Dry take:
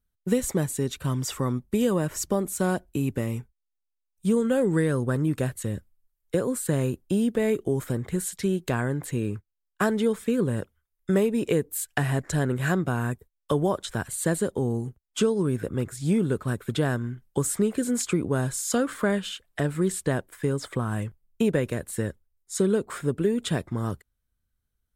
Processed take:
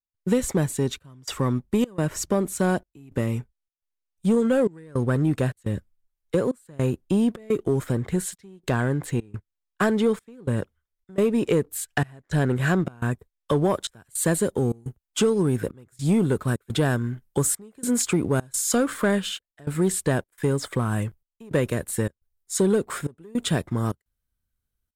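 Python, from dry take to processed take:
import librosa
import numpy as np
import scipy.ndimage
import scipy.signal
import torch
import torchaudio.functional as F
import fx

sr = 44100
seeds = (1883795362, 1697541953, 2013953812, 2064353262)

y = fx.high_shelf(x, sr, hz=9500.0, db=fx.steps((0.0, -9.0), (13.69, 3.5)))
y = fx.leveller(y, sr, passes=1)
y = fx.step_gate(y, sr, bpm=106, pattern='.xxxxxx..xxxx', floor_db=-24.0, edge_ms=4.5)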